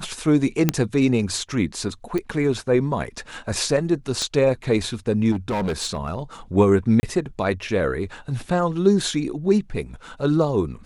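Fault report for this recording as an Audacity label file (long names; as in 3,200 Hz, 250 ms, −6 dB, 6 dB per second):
0.690000	0.690000	click −3 dBFS
2.180000	2.180000	click −14 dBFS
4.220000	4.220000	click −14 dBFS
5.310000	6.190000	clipping −20.5 dBFS
7.000000	7.030000	drop-out 30 ms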